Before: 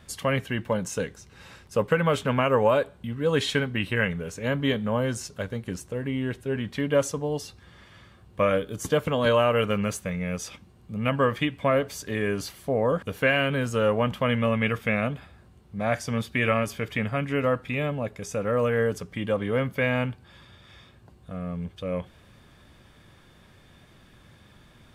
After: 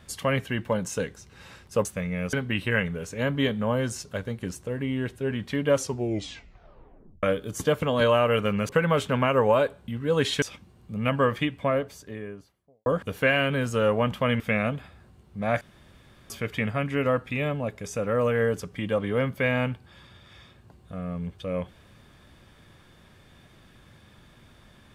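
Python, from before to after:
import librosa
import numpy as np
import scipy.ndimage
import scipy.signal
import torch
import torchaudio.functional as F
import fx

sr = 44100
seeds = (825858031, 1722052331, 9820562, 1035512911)

y = fx.studio_fade_out(x, sr, start_s=11.24, length_s=1.62)
y = fx.edit(y, sr, fx.swap(start_s=1.85, length_s=1.73, other_s=9.94, other_length_s=0.48),
    fx.tape_stop(start_s=7.0, length_s=1.48),
    fx.cut(start_s=14.4, length_s=0.38),
    fx.room_tone_fill(start_s=15.99, length_s=0.69), tone=tone)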